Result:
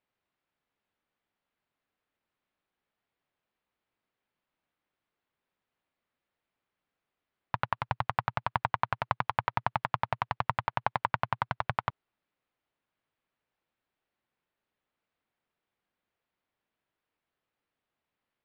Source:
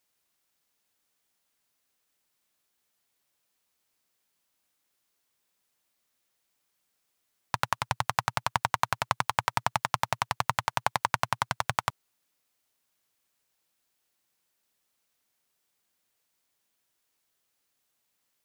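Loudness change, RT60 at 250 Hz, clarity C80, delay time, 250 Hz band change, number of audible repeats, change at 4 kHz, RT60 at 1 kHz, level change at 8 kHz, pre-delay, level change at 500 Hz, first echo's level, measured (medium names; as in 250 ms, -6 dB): -2.5 dB, no reverb, no reverb, no echo, -0.5 dB, no echo, -10.0 dB, no reverb, under -25 dB, no reverb, -1.5 dB, no echo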